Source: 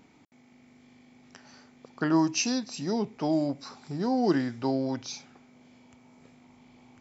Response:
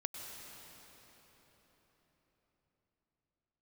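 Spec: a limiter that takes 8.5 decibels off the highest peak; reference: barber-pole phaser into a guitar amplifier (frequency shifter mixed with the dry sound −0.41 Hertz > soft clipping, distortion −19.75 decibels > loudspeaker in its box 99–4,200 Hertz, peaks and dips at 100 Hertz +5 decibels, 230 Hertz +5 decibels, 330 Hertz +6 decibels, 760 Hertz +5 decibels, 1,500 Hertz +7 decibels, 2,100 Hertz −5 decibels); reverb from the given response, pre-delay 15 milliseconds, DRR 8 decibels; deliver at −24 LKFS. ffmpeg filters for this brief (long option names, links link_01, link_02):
-filter_complex "[0:a]alimiter=limit=-20.5dB:level=0:latency=1,asplit=2[link_01][link_02];[1:a]atrim=start_sample=2205,adelay=15[link_03];[link_02][link_03]afir=irnorm=-1:irlink=0,volume=-8dB[link_04];[link_01][link_04]amix=inputs=2:normalize=0,asplit=2[link_05][link_06];[link_06]afreqshift=-0.41[link_07];[link_05][link_07]amix=inputs=2:normalize=1,asoftclip=threshold=-24.5dB,highpass=99,equalizer=frequency=100:width_type=q:width=4:gain=5,equalizer=frequency=230:width_type=q:width=4:gain=5,equalizer=frequency=330:width_type=q:width=4:gain=6,equalizer=frequency=760:width_type=q:width=4:gain=5,equalizer=frequency=1500:width_type=q:width=4:gain=7,equalizer=frequency=2100:width_type=q:width=4:gain=-5,lowpass=frequency=4200:width=0.5412,lowpass=frequency=4200:width=1.3066,volume=8dB"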